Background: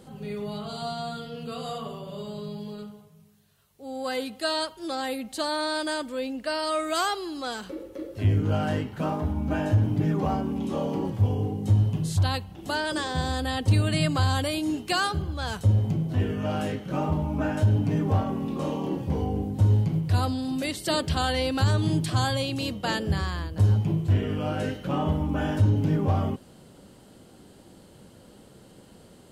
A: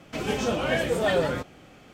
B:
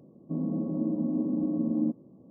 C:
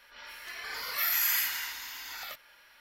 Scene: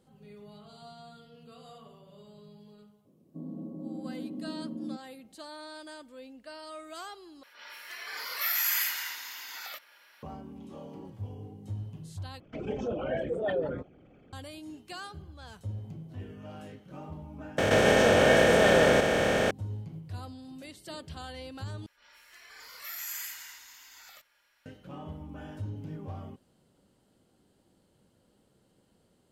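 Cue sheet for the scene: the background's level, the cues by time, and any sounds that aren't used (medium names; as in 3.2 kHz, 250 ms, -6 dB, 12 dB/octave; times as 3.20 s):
background -16.5 dB
3.05 s: add B -10 dB
7.43 s: replace with C -0.5 dB + high-pass 280 Hz
12.40 s: replace with A -6.5 dB + resonances exaggerated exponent 2
17.58 s: add A -3 dB + spectral levelling over time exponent 0.2
21.86 s: replace with C -12 dB + peaking EQ 7.4 kHz +9 dB 0.49 oct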